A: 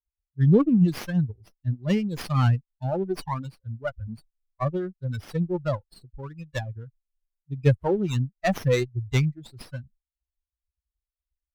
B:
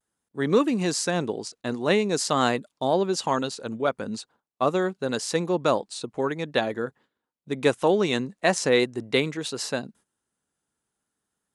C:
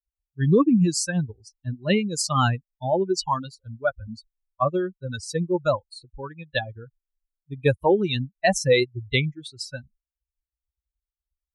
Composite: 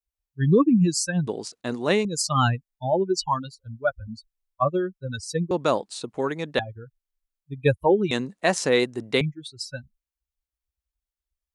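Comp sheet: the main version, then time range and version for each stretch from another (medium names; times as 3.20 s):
C
1.27–2.05 s: from B
5.51–6.59 s: from B
8.11–9.21 s: from B
not used: A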